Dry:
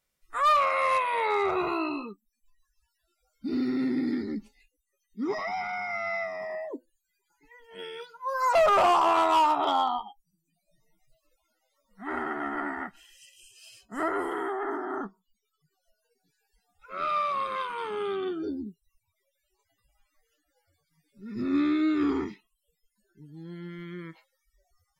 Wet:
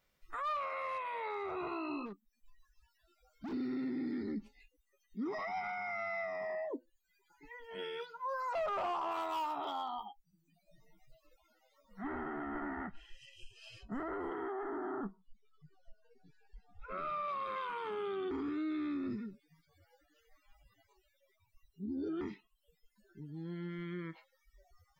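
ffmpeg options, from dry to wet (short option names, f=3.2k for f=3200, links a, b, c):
-filter_complex "[0:a]asplit=3[a][b][c];[a]afade=t=out:st=2.05:d=0.02[d];[b]asoftclip=type=hard:threshold=-40dB,afade=t=in:st=2.05:d=0.02,afade=t=out:st=3.52:d=0.02[e];[c]afade=t=in:st=3.52:d=0.02[f];[d][e][f]amix=inputs=3:normalize=0,asettb=1/sr,asplit=3[g][h][i];[g]atrim=end=9.114[j];[h]atrim=start=9.11:end=10.06,asetpts=PTS-STARTPTS,afade=t=in:d=0.004:c=qsin,afade=t=out:st=0.946:d=0.004:c=qsin,aemphasis=mode=production:type=50fm[k];[i]atrim=start=10.056[l];[j][k]acrossfade=d=0.004:c1=hsin:c2=qsin[m];[m][l]acrossfade=d=0.004:c1=qsin:c2=hsin,asettb=1/sr,asplit=3[n][o][p];[n]atrim=end=12.044[q];[o]atrim=start=12.04:end=17.28,asetpts=PTS-STARTPTS,afade=t=in:d=0.004:c=qsin,afade=t=out:st=5.236:d=0.004:c=qsin,aemphasis=mode=reproduction:type=bsi[r];[p]atrim=start=17.276[s];[q][r]acrossfade=d=0.004:c1=hsin:c2=qsin[t];[t][s]acrossfade=d=0.004:c1=qsin:c2=hsin,asplit=3[u][v][w];[u]atrim=end=18.312[x];[v]atrim=start=18.308:end=22.212,asetpts=PTS-STARTPTS,areverse[y];[w]atrim=start=22.208[z];[x][y]acrossfade=d=0.004:c1=hsin:c2=hsin[aa];[aa][z]acrossfade=d=0.004:c1=hsin:c2=hsin,equalizer=f=9.8k:w=0.73:g=-12.5,acompressor=threshold=-56dB:ratio=1.5,alimiter=level_in=13dB:limit=-24dB:level=0:latency=1:release=25,volume=-13dB,volume=5dB"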